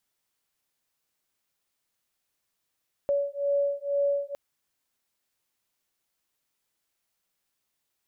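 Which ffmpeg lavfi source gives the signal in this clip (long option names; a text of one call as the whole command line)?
ffmpeg -f lavfi -i "aevalsrc='0.0447*(sin(2*PI*565*t)+sin(2*PI*567.1*t))':duration=1.26:sample_rate=44100" out.wav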